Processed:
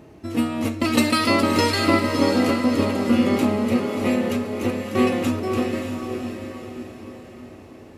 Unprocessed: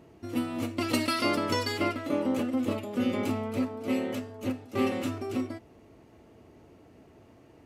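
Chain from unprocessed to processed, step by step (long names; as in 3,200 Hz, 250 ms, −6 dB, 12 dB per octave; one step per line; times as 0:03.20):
speed change −4%
feedback delay with all-pass diffusion 614 ms, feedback 46%, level −5.5 dB
level +8 dB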